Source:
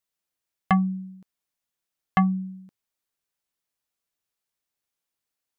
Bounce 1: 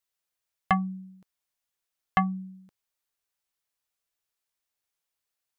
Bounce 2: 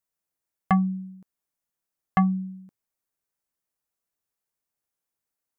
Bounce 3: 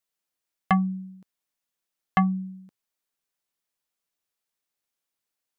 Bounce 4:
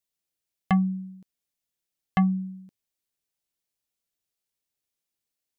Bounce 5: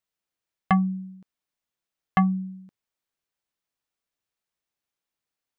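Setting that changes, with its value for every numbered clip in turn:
peaking EQ, frequency: 220 Hz, 3.4 kHz, 69 Hz, 1.2 kHz, 15 kHz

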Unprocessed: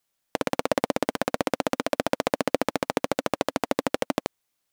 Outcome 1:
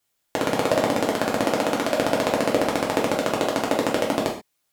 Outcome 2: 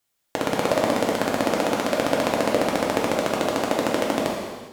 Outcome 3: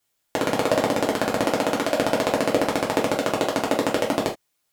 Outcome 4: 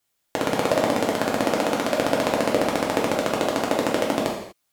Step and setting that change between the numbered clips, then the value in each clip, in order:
gated-style reverb, gate: 160 ms, 510 ms, 100 ms, 270 ms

